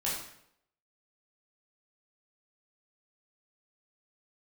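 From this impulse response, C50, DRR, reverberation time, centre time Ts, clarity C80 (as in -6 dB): 2.5 dB, -7.0 dB, 0.70 s, 51 ms, 6.0 dB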